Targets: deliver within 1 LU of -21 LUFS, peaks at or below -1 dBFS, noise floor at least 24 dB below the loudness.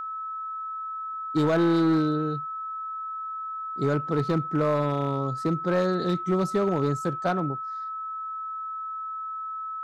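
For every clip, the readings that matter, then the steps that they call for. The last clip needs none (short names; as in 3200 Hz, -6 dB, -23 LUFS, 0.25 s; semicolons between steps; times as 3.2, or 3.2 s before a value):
clipped 1.0%; flat tops at -17.0 dBFS; steady tone 1300 Hz; tone level -31 dBFS; loudness -27.5 LUFS; peak -17.0 dBFS; loudness target -21.0 LUFS
-> clip repair -17 dBFS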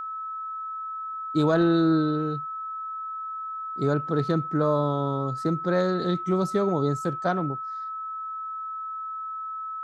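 clipped 0.0%; steady tone 1300 Hz; tone level -31 dBFS
-> notch 1300 Hz, Q 30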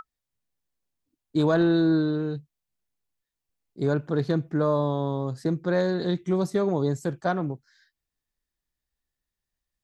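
steady tone none; loudness -25.5 LUFS; peak -10.5 dBFS; loudness target -21.0 LUFS
-> gain +4.5 dB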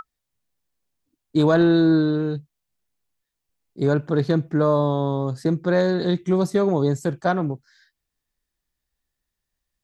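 loudness -21.0 LUFS; peak -6.0 dBFS; noise floor -82 dBFS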